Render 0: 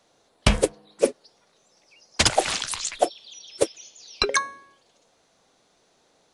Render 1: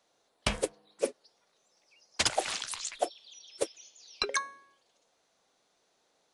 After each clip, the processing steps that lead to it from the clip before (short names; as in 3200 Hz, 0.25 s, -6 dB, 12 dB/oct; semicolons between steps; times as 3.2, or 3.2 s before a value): low shelf 270 Hz -8.5 dB; gain -8 dB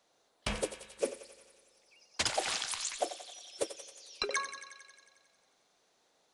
limiter -19 dBFS, peak gain reduction 7.5 dB; thinning echo 90 ms, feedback 72%, high-pass 700 Hz, level -10 dB; on a send at -22 dB: reverb RT60 2.2 s, pre-delay 42 ms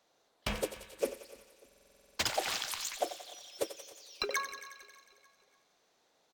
feedback echo 0.296 s, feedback 50%, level -21.5 dB; stuck buffer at 1.67, samples 2048, times 10; decimation joined by straight lines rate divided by 2×